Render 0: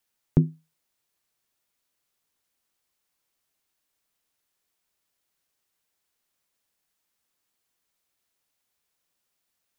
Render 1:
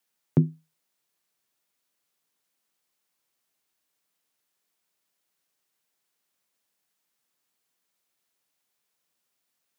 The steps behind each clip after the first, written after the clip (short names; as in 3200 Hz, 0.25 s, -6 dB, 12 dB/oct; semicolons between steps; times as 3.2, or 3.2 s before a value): HPF 120 Hz 24 dB/oct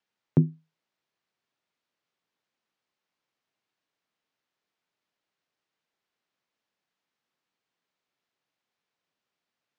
air absorption 160 m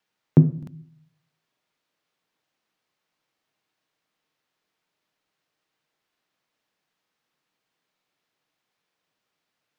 reverb RT60 0.55 s, pre-delay 6 ms, DRR 12 dB; crackling interface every 0.92 s, samples 2048, repeat, from 0.58; gain +5.5 dB